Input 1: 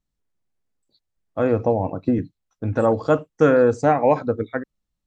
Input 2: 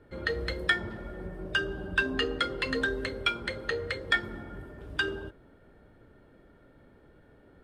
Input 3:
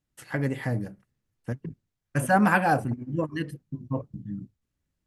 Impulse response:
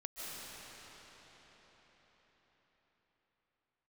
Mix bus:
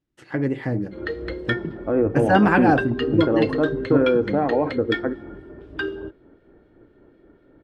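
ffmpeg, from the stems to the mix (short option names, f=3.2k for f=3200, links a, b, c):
-filter_complex "[0:a]lowpass=1.9k,alimiter=limit=-13dB:level=0:latency=1:release=23,adelay=500,volume=-5dB[a];[1:a]acrossover=split=2100[b][c];[b]aeval=exprs='val(0)*(1-0.5/2+0.5/2*cos(2*PI*4*n/s))':c=same[d];[c]aeval=exprs='val(0)*(1-0.5/2-0.5/2*cos(2*PI*4*n/s))':c=same[e];[d][e]amix=inputs=2:normalize=0,adelay=800,volume=-1.5dB[f];[2:a]volume=-0.5dB[g];[a][f][g]amix=inputs=3:normalize=0,lowpass=4.6k,equalizer=f=340:t=o:w=0.77:g=11,dynaudnorm=f=140:g=11:m=3dB"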